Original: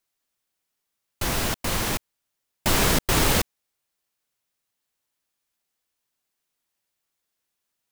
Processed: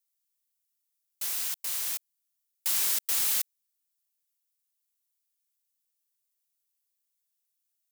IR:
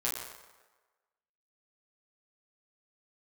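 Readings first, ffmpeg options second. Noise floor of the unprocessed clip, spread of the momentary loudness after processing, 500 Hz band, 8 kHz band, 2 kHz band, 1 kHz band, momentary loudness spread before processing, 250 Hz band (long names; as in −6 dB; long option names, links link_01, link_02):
−81 dBFS, 10 LU, −26.0 dB, −2.5 dB, −14.0 dB, −19.5 dB, 10 LU, below −30 dB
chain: -af "aderivative,volume=-3dB"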